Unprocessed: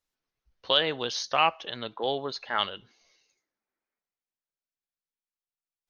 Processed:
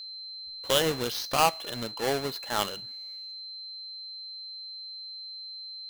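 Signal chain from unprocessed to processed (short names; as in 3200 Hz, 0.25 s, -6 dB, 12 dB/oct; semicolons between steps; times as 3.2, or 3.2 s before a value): half-waves squared off; harmonic-percussive split percussive -5 dB; whine 4100 Hz -37 dBFS; gain -1.5 dB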